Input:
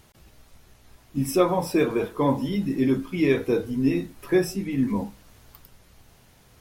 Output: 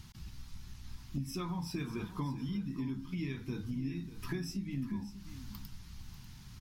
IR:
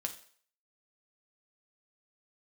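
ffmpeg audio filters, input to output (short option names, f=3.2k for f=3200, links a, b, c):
-filter_complex "[0:a]firequalizer=gain_entry='entry(180,0);entry(530,-29);entry(890,-10);entry(2100,-9);entry(4900,-2);entry(8500,-11)':delay=0.05:min_phase=1,acompressor=threshold=-43dB:ratio=6,asplit=2[a][b];[b]aecho=0:1:593:0.211[c];[a][c]amix=inputs=2:normalize=0,volume=7dB"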